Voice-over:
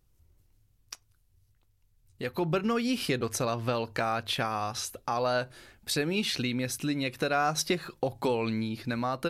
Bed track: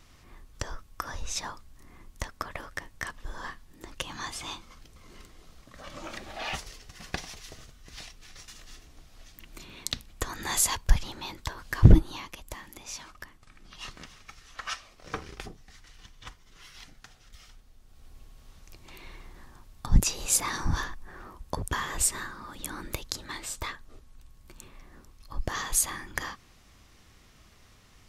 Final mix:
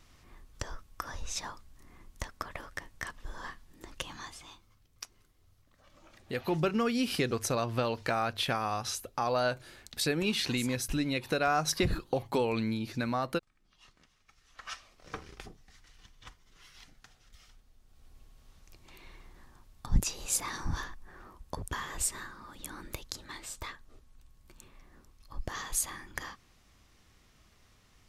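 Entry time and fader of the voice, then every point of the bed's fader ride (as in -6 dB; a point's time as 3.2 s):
4.10 s, -1.0 dB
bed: 4.06 s -3.5 dB
4.7 s -18.5 dB
14.16 s -18.5 dB
14.76 s -6 dB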